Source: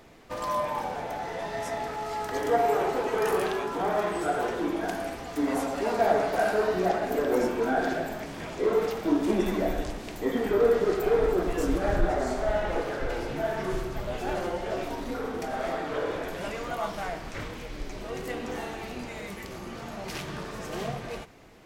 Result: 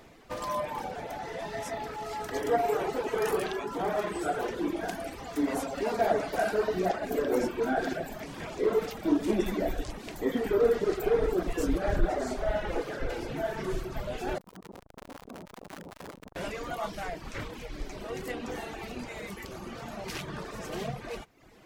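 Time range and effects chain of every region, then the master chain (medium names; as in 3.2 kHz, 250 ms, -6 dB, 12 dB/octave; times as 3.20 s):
14.38–16.36 s: FFT filter 130 Hz 0 dB, 180 Hz +11 dB, 460 Hz -14 dB, 1.7 kHz -2 dB, 3.3 kHz -18 dB, 5.6 kHz -11 dB, 9.4 kHz -6 dB + Schmitt trigger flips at -43.5 dBFS + transformer saturation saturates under 750 Hz
whole clip: dynamic bell 990 Hz, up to -3 dB, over -37 dBFS, Q 0.89; reverb removal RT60 0.71 s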